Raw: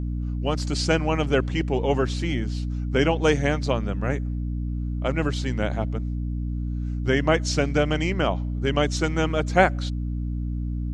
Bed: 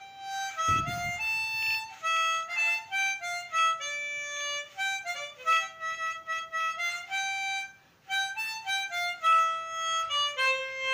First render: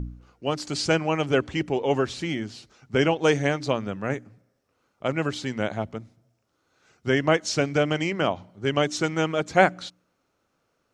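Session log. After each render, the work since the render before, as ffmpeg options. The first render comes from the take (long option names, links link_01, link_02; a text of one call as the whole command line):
ffmpeg -i in.wav -af "bandreject=frequency=60:width_type=h:width=4,bandreject=frequency=120:width_type=h:width=4,bandreject=frequency=180:width_type=h:width=4,bandreject=frequency=240:width_type=h:width=4,bandreject=frequency=300:width_type=h:width=4" out.wav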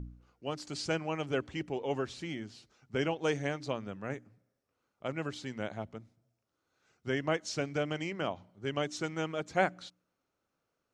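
ffmpeg -i in.wav -af "volume=-10.5dB" out.wav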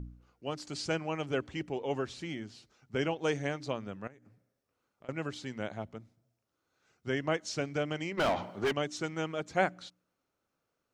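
ffmpeg -i in.wav -filter_complex "[0:a]asettb=1/sr,asplit=3[link_01][link_02][link_03];[link_01]atrim=end=4.074[link_04];[link_02]atrim=start=4.07:end=5.09,asetpts=PTS-STARTPTS,afade=type=in:duration=0.004:curve=qsin,afade=type=out:start_time=1.016:duration=0.004:curve=qsin,acompressor=threshold=-52dB:ratio=6:attack=3.2:release=140:knee=1:detection=peak[link_05];[link_03]atrim=start=5.086[link_06];[link_04][link_05]acrossfade=duration=0.004:curve1=hsin:curve2=qsin[link_07];[link_07][link_06]acrossfade=duration=0.004:curve1=qsin:curve2=hsin,asplit=3[link_08][link_09][link_10];[link_08]afade=type=out:start_time=8.17:duration=0.02[link_11];[link_09]asplit=2[link_12][link_13];[link_13]highpass=frequency=720:poles=1,volume=32dB,asoftclip=type=tanh:threshold=-20.5dB[link_14];[link_12][link_14]amix=inputs=2:normalize=0,lowpass=frequency=2100:poles=1,volume=-6dB,afade=type=in:start_time=8.17:duration=0.02,afade=type=out:start_time=8.71:duration=0.02[link_15];[link_10]afade=type=in:start_time=8.71:duration=0.02[link_16];[link_11][link_15][link_16]amix=inputs=3:normalize=0" out.wav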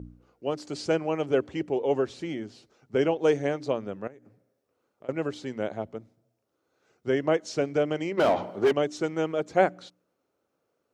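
ffmpeg -i in.wav -af "highpass=58,equalizer=frequency=450:width_type=o:width=1.8:gain=10" out.wav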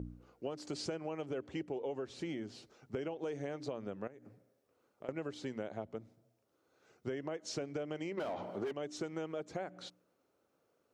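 ffmpeg -i in.wav -af "alimiter=limit=-19dB:level=0:latency=1:release=102,acompressor=threshold=-37dB:ratio=6" out.wav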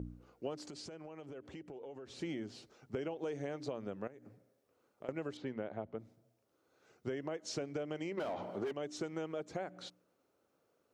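ffmpeg -i in.wav -filter_complex "[0:a]asplit=3[link_01][link_02][link_03];[link_01]afade=type=out:start_time=0.67:duration=0.02[link_04];[link_02]acompressor=threshold=-45dB:ratio=6:attack=3.2:release=140:knee=1:detection=peak,afade=type=in:start_time=0.67:duration=0.02,afade=type=out:start_time=2.06:duration=0.02[link_05];[link_03]afade=type=in:start_time=2.06:duration=0.02[link_06];[link_04][link_05][link_06]amix=inputs=3:normalize=0,asettb=1/sr,asplit=3[link_07][link_08][link_09];[link_07]atrim=end=5.374[link_10];[link_08]atrim=start=5.37:end=5.99,asetpts=PTS-STARTPTS,afade=type=in:duration=0.004:curve=qsin,afade=type=out:start_time=0.616:duration=0.004:curve=qsin,lowpass=2700[link_11];[link_09]atrim=start=5.986[link_12];[link_10][link_11]acrossfade=duration=0.004:curve1=hsin:curve2=qsin[link_13];[link_13][link_12]acrossfade=duration=0.004:curve1=qsin:curve2=hsin" out.wav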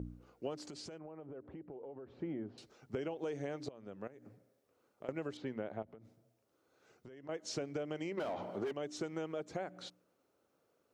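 ffmpeg -i in.wav -filter_complex "[0:a]asettb=1/sr,asplit=3[link_01][link_02][link_03];[link_01]atrim=end=0.984[link_04];[link_02]atrim=start=0.98:end=2.58,asetpts=PTS-STARTPTS,afade=type=in:duration=0.004:curve=qsin,afade=type=out:start_time=1.596:duration=0.004:curve=qsin,lowpass=1200[link_05];[link_03]atrim=start=2.576[link_06];[link_04][link_05]acrossfade=duration=0.004:curve1=hsin:curve2=qsin[link_07];[link_07][link_06]acrossfade=duration=0.004:curve1=qsin:curve2=hsin,asettb=1/sr,asplit=3[link_08][link_09][link_10];[link_08]atrim=end=5.824[link_11];[link_09]atrim=start=5.82:end=7.29,asetpts=PTS-STARTPTS,afade=type=in:duration=0.004:curve=qsin,afade=type=out:start_time=1.466:duration=0.004:curve=qsin,acompressor=threshold=-49dB:ratio=16:attack=3.2:release=140:knee=1:detection=peak[link_12];[link_10]atrim=start=7.286[link_13];[link_11][link_12]acrossfade=duration=0.004:curve1=hsin:curve2=qsin[link_14];[link_14][link_13]acrossfade=duration=0.004:curve1=qsin:curve2=hsin,asplit=2[link_15][link_16];[link_15]atrim=end=3.69,asetpts=PTS-STARTPTS,afade=type=out:start_time=3.686:duration=0.004:curve=hsin:silence=0.141254[link_17];[link_16]atrim=start=3.69,asetpts=PTS-STARTPTS,afade=type=in:duration=0.53:silence=0.141254[link_18];[link_17][link_18]concat=n=2:v=0:a=1" out.wav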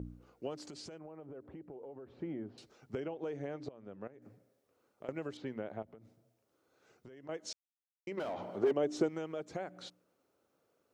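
ffmpeg -i in.wav -filter_complex "[0:a]asettb=1/sr,asplit=3[link_01][link_02][link_03];[link_01]atrim=end=3.004[link_04];[link_02]atrim=start=3:end=4.22,asetpts=PTS-STARTPTS,afade=type=in:duration=0.004:curve=qsin,afade=type=out:start_time=1.216:duration=0.004:curve=qsin,lowpass=frequency=2300:poles=1[link_05];[link_03]atrim=start=4.216[link_06];[link_04][link_05]acrossfade=duration=0.004:curve1=hsin:curve2=qsin[link_07];[link_07][link_06]acrossfade=duration=0.004:curve1=qsin:curve2=hsin,asettb=1/sr,asplit=3[link_08][link_09][link_10];[link_08]atrim=end=8.634[link_11];[link_09]atrim=start=8.63:end=9.09,asetpts=PTS-STARTPTS,afade=type=in:duration=0.004:curve=qsin,afade=type=out:start_time=0.456:duration=0.004:curve=qsin,equalizer=frequency=410:width=0.41:gain=10[link_12];[link_10]atrim=start=9.086[link_13];[link_11][link_12]acrossfade=duration=0.004:curve1=hsin:curve2=qsin[link_14];[link_14][link_13]acrossfade=duration=0.004:curve1=qsin:curve2=hsin,asplit=3[link_15][link_16][link_17];[link_15]atrim=end=7.53,asetpts=PTS-STARTPTS,afade=type=out:start_time=7.526:duration=0.004:curve=hsin[link_18];[link_16]atrim=start=7.53:end=8.07,asetpts=PTS-STARTPTS,volume=0[link_19];[link_17]atrim=start=8.07,asetpts=PTS-STARTPTS,afade=type=in:duration=0.004:curve=hsin[link_20];[link_18][link_19][link_20]concat=n=3:v=0:a=1" out.wav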